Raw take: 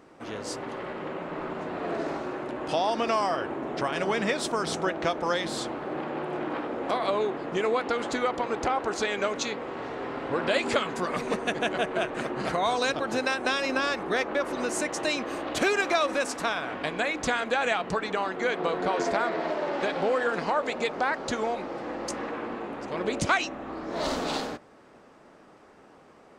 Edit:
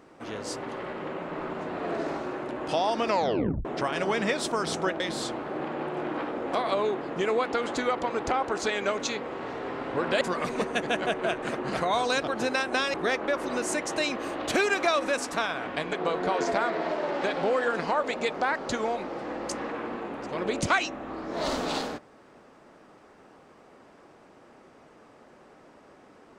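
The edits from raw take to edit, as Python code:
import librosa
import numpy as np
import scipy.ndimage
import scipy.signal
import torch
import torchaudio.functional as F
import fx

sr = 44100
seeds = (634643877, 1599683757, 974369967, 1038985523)

y = fx.edit(x, sr, fx.tape_stop(start_s=3.08, length_s=0.57),
    fx.cut(start_s=5.0, length_s=0.36),
    fx.cut(start_s=10.57, length_s=0.36),
    fx.cut(start_s=13.66, length_s=0.35),
    fx.cut(start_s=17.0, length_s=1.52), tone=tone)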